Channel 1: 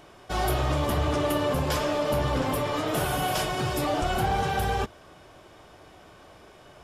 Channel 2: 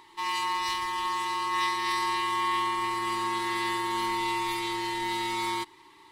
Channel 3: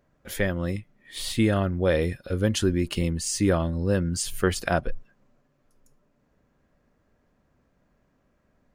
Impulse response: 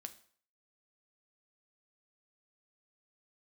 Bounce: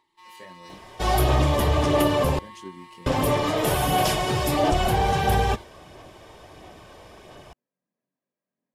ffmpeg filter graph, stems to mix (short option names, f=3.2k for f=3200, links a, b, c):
-filter_complex "[0:a]adelay=700,volume=2dB,asplit=3[a][b][c];[a]atrim=end=2.39,asetpts=PTS-STARTPTS,afade=t=out:st=2.386:d=0.004:c=hsin[d];[b]atrim=start=2.39:end=3.06,asetpts=PTS-STARTPTS,volume=0[e];[c]atrim=start=3.06,asetpts=PTS-STARTPTS,afade=t=in:d=0.004:c=hsin[f];[d][e][f]concat=n=3:v=0:a=1,asplit=2[g][h];[h]volume=-5.5dB[i];[1:a]volume=-18dB[j];[2:a]flanger=delay=20:depth=2.6:speed=1.2,highpass=f=160:w=0.5412,highpass=f=160:w=1.3066,volume=-17dB[k];[3:a]atrim=start_sample=2205[l];[i][l]afir=irnorm=-1:irlink=0[m];[g][j][k][m]amix=inputs=4:normalize=0,bandreject=f=1.4k:w=5.8,aphaser=in_gain=1:out_gain=1:delay=2.2:decay=0.26:speed=1.5:type=sinusoidal"